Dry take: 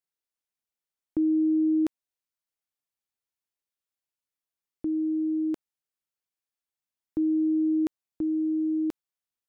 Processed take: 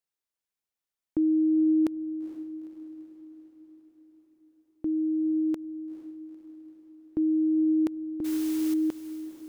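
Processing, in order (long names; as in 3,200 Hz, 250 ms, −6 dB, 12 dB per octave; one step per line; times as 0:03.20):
0:08.24–0:08.74: noise that follows the level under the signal 17 dB
on a send: feedback delay with all-pass diffusion 461 ms, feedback 58%, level −13 dB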